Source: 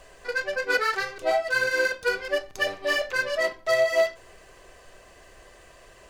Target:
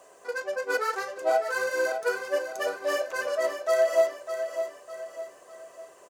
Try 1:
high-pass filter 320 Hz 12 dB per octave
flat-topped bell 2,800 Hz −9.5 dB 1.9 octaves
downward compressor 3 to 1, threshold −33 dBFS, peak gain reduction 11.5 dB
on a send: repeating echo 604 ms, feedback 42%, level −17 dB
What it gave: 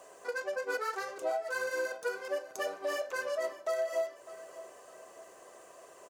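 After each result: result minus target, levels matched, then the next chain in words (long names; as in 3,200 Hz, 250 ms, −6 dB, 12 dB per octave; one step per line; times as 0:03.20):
downward compressor: peak gain reduction +11.5 dB; echo-to-direct −8 dB
high-pass filter 320 Hz 12 dB per octave
flat-topped bell 2,800 Hz −9.5 dB 1.9 octaves
on a send: repeating echo 604 ms, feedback 42%, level −17 dB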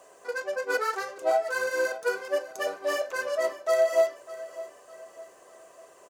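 echo-to-direct −8 dB
high-pass filter 320 Hz 12 dB per octave
flat-topped bell 2,800 Hz −9.5 dB 1.9 octaves
on a send: repeating echo 604 ms, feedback 42%, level −9 dB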